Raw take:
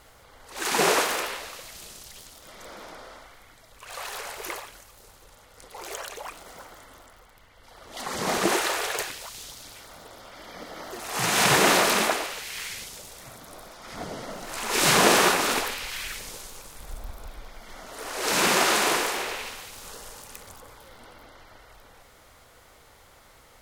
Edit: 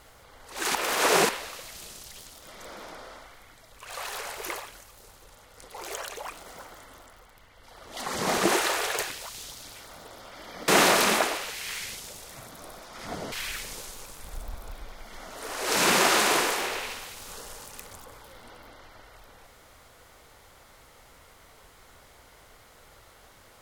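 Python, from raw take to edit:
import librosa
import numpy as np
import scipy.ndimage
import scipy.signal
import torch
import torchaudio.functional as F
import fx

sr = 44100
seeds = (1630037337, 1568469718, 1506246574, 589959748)

y = fx.edit(x, sr, fx.reverse_span(start_s=0.75, length_s=0.54),
    fx.cut(start_s=10.68, length_s=0.89),
    fx.cut(start_s=14.21, length_s=1.67), tone=tone)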